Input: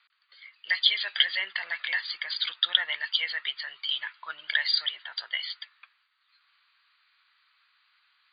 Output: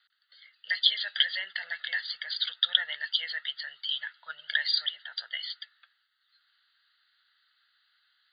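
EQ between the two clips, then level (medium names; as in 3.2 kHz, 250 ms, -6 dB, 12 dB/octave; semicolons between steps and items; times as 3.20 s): peaking EQ 760 Hz -5.5 dB 1.1 oct; static phaser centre 1.6 kHz, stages 8; 0.0 dB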